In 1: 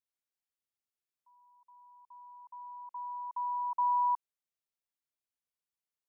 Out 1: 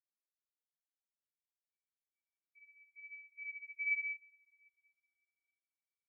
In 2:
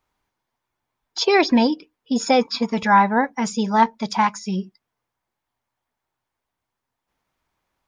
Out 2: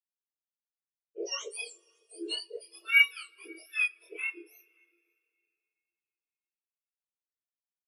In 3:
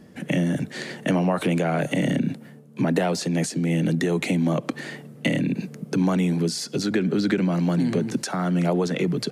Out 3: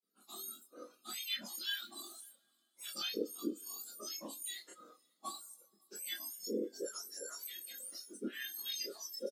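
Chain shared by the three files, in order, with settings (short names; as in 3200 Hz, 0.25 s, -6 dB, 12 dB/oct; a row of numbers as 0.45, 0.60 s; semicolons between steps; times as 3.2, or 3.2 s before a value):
spectrum mirrored in octaves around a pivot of 1500 Hz; LPF 3200 Hz 6 dB/oct; gate with hold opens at -47 dBFS; HPF 650 Hz 6 dB/oct; reverb removal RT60 1.6 s; bell 910 Hz -14 dB 0.83 oct; chorus voices 4, 0.29 Hz, delay 26 ms, depth 3.8 ms; on a send: echo 0.55 s -24 dB; on the sum: two-slope reverb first 0.28 s, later 4.3 s, from -18 dB, DRR 8.5 dB; spectral expander 1.5:1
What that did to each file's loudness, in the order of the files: -6.0, -9.0, -18.0 LU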